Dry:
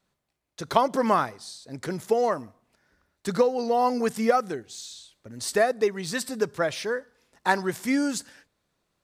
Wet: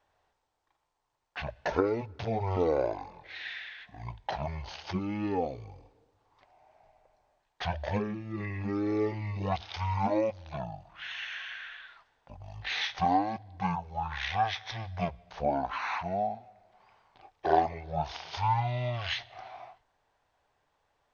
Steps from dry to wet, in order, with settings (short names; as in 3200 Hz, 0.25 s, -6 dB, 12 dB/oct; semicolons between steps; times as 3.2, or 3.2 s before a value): graphic EQ 125/500/2000 Hz -6/-12/+11 dB; compressor 1.5:1, threshold -34 dBFS, peak gain reduction 8 dB; speed mistake 78 rpm record played at 33 rpm